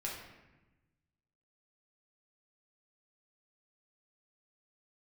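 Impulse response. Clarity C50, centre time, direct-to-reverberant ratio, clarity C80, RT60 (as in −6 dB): 2.5 dB, 55 ms, −4.0 dB, 5.5 dB, 1.1 s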